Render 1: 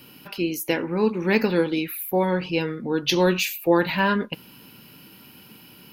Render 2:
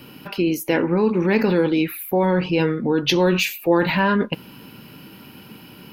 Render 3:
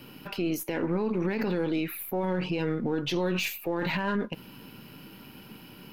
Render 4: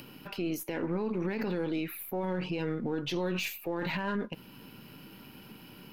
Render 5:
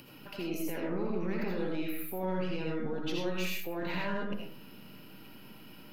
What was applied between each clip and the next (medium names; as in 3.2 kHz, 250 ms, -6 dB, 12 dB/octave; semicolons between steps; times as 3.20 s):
treble shelf 3 kHz -9 dB; in parallel at -2 dB: compressor with a negative ratio -25 dBFS, ratio -0.5; on the sum: trim +1 dB
partial rectifier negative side -3 dB; peak limiter -15.5 dBFS, peak gain reduction 10.5 dB; trim -4 dB
upward compressor, threshold -41 dBFS; trim -4 dB
algorithmic reverb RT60 0.49 s, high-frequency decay 0.5×, pre-delay 40 ms, DRR -2 dB; trim -5 dB